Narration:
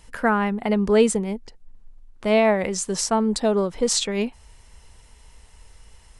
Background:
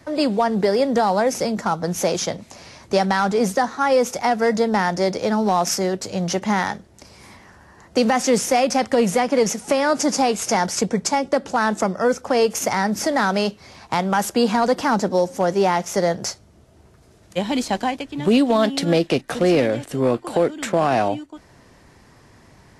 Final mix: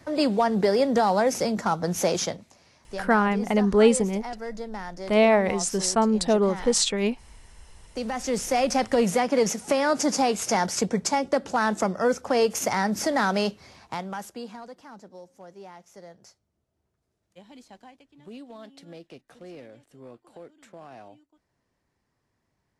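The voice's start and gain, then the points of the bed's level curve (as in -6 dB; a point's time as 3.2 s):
2.85 s, -0.5 dB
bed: 2.24 s -3 dB
2.58 s -16.5 dB
7.82 s -16.5 dB
8.68 s -4 dB
13.57 s -4 dB
14.79 s -26.5 dB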